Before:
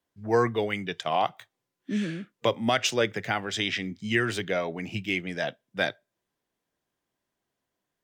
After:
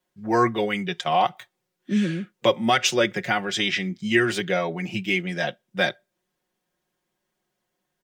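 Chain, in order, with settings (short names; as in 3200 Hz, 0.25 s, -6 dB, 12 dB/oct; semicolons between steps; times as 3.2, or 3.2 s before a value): comb 5.5 ms, depth 77%; gain +2.5 dB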